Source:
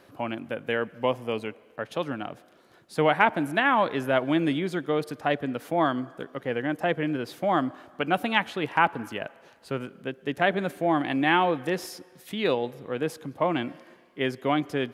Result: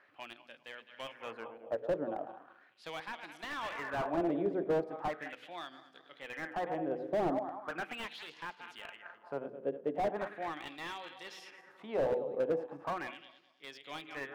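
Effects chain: regenerating reverse delay 0.11 s, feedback 61%, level -11 dB; tilt -2 dB/oct; notches 60/120/180/240/300/360/420/480 Hz; LFO band-pass sine 0.37 Hz 490–4900 Hz; speed mistake 24 fps film run at 25 fps; slew limiter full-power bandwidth 23 Hz

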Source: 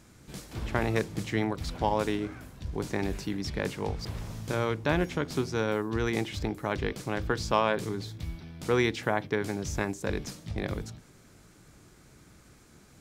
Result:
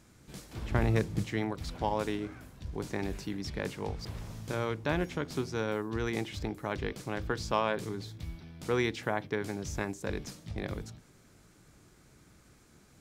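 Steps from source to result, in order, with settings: 0.7–1.24 low shelf 200 Hz +10.5 dB; gain -4 dB

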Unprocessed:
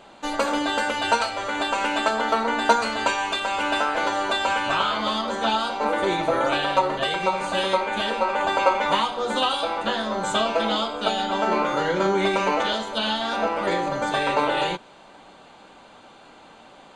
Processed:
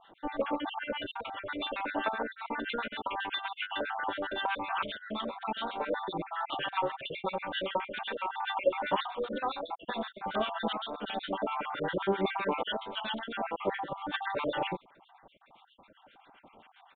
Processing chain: random spectral dropouts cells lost 47%; harmonic tremolo 7.6 Hz, depth 100%, crossover 1100 Hz; downsampling 8000 Hz; gain -3 dB

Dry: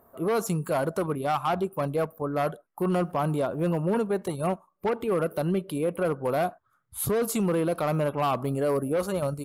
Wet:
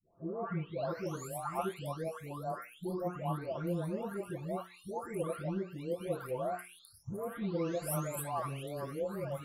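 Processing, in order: spectral delay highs late, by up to 0.892 s; notches 60/120/180/240/300/360/420/480 Hz; gain -8 dB

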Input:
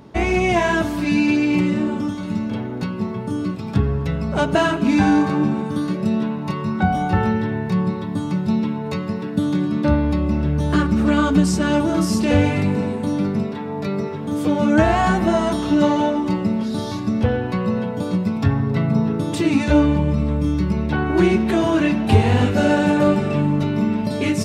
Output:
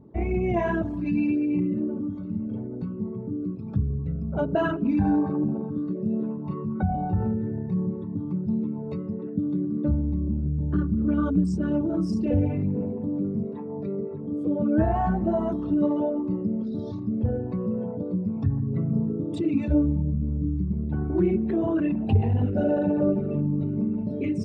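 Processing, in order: formant sharpening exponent 2; gain -6.5 dB

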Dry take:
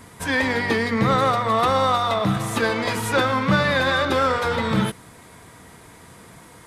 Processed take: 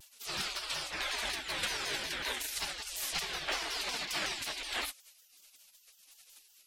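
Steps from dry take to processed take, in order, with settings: spectral gate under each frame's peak -25 dB weak; shaped vibrato saw down 5.4 Hz, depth 250 cents; gain +1 dB

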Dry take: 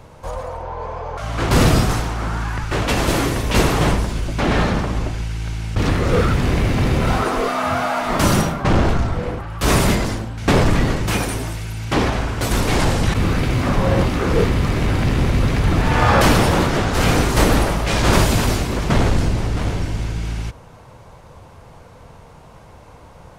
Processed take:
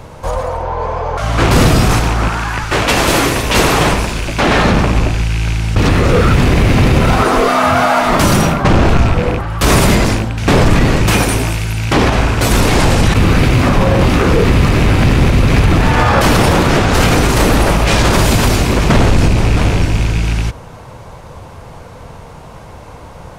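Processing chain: rattling part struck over -22 dBFS, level -22 dBFS; 2.28–4.65 low shelf 320 Hz -7.5 dB; maximiser +10.5 dB; gain -1 dB

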